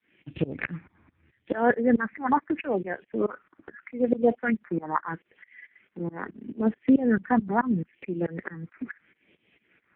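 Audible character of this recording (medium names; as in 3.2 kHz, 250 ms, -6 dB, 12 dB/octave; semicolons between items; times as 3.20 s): phasing stages 4, 0.77 Hz, lowest notch 530–1200 Hz; tremolo saw up 4.6 Hz, depth 100%; AMR-NB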